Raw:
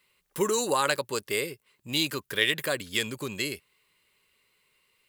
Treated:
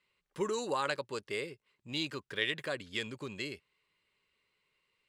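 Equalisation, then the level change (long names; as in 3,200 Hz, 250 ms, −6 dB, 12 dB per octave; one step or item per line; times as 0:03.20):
high-frequency loss of the air 90 metres
−7.0 dB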